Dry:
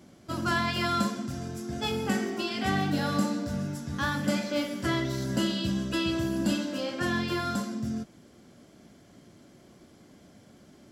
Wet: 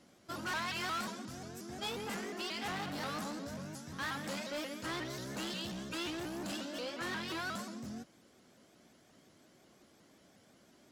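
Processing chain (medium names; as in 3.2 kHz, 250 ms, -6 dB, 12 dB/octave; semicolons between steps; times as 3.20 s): hard clipper -28 dBFS, distortion -9 dB; bass shelf 330 Hz -10.5 dB; vibrato with a chosen wave saw up 5.6 Hz, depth 160 cents; trim -4.5 dB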